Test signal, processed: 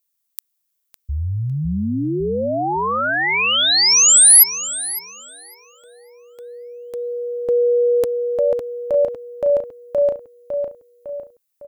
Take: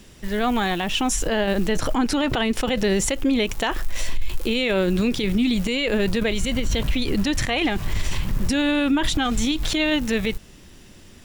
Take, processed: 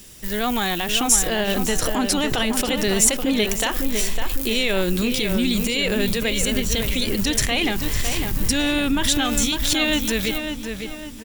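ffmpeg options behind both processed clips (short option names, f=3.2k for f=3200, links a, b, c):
-filter_complex "[0:a]aemphasis=mode=production:type=75kf,asplit=2[a][b];[b]adelay=555,lowpass=f=2.8k:p=1,volume=-6dB,asplit=2[c][d];[d]adelay=555,lowpass=f=2.8k:p=1,volume=0.47,asplit=2[e][f];[f]adelay=555,lowpass=f=2.8k:p=1,volume=0.47,asplit=2[g][h];[h]adelay=555,lowpass=f=2.8k:p=1,volume=0.47,asplit=2[i][j];[j]adelay=555,lowpass=f=2.8k:p=1,volume=0.47,asplit=2[k][l];[l]adelay=555,lowpass=f=2.8k:p=1,volume=0.47[m];[c][e][g][i][k][m]amix=inputs=6:normalize=0[n];[a][n]amix=inputs=2:normalize=0,volume=-2dB"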